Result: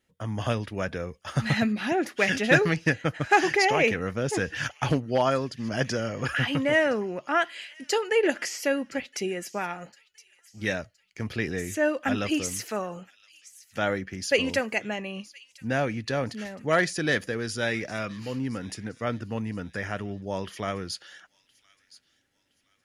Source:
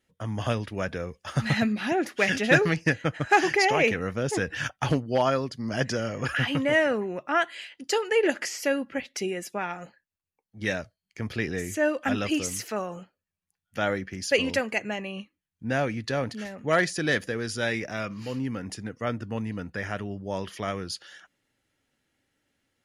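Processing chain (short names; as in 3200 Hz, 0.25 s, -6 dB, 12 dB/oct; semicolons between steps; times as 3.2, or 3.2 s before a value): thin delay 1.017 s, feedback 37%, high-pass 3100 Hz, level -17 dB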